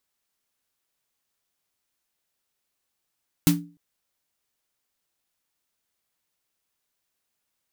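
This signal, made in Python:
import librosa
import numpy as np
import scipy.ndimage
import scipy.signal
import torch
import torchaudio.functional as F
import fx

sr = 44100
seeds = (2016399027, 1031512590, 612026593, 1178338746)

y = fx.drum_snare(sr, seeds[0], length_s=0.3, hz=170.0, second_hz=290.0, noise_db=-5.0, noise_from_hz=660.0, decay_s=0.37, noise_decay_s=0.18)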